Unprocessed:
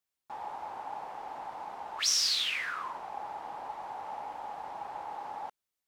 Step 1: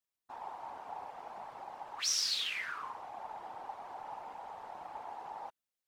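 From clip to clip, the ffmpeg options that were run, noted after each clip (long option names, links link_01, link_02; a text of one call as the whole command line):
ffmpeg -i in.wav -af "afftfilt=real='hypot(re,im)*cos(2*PI*random(0))':imag='hypot(re,im)*sin(2*PI*random(1))':win_size=512:overlap=0.75,volume=1dB" out.wav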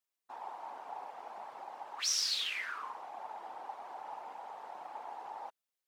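ffmpeg -i in.wav -af "highpass=270" out.wav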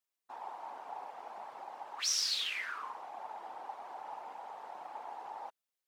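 ffmpeg -i in.wav -af anull out.wav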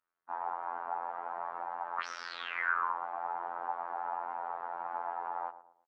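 ffmpeg -i in.wav -filter_complex "[0:a]lowpass=frequency=1400:width_type=q:width=3,asplit=2[link_01][link_02];[link_02]adelay=114,lowpass=frequency=850:poles=1,volume=-11.5dB,asplit=2[link_03][link_04];[link_04]adelay=114,lowpass=frequency=850:poles=1,volume=0.44,asplit=2[link_05][link_06];[link_06]adelay=114,lowpass=frequency=850:poles=1,volume=0.44,asplit=2[link_07][link_08];[link_08]adelay=114,lowpass=frequency=850:poles=1,volume=0.44[link_09];[link_01][link_03][link_05][link_07][link_09]amix=inputs=5:normalize=0,afftfilt=real='hypot(re,im)*cos(PI*b)':imag='0':win_size=2048:overlap=0.75,volume=7dB" out.wav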